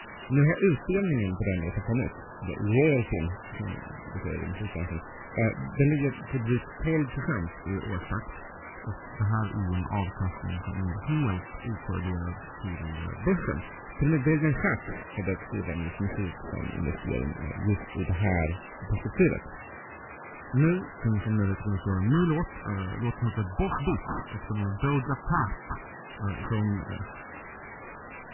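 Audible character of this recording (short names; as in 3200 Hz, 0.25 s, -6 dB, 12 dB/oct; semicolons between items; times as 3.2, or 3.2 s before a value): aliases and images of a low sample rate 2800 Hz, jitter 0%; phasing stages 6, 0.072 Hz, lowest notch 530–1200 Hz; a quantiser's noise floor 6-bit, dither triangular; MP3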